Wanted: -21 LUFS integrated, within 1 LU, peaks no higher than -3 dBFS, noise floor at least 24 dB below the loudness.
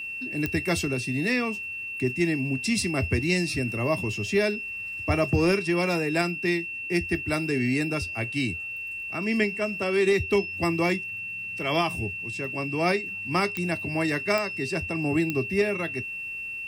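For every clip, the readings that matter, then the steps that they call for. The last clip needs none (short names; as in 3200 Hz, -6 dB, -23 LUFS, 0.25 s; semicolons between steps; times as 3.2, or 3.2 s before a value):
clicks 4; steady tone 2700 Hz; tone level -32 dBFS; loudness -26.5 LUFS; peak -11.5 dBFS; loudness target -21.0 LUFS
-> de-click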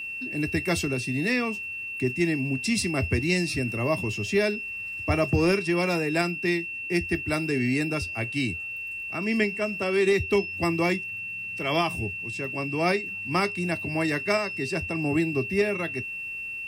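clicks 0; steady tone 2700 Hz; tone level -32 dBFS
-> notch 2700 Hz, Q 30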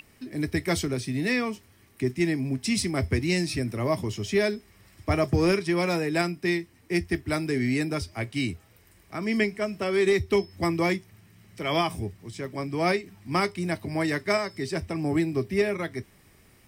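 steady tone none; loudness -27.0 LUFS; peak -13.5 dBFS; loudness target -21.0 LUFS
-> gain +6 dB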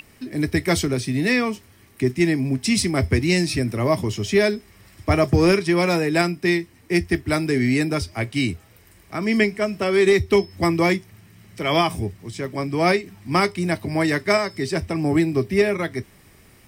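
loudness -21.0 LUFS; peak -7.5 dBFS; noise floor -52 dBFS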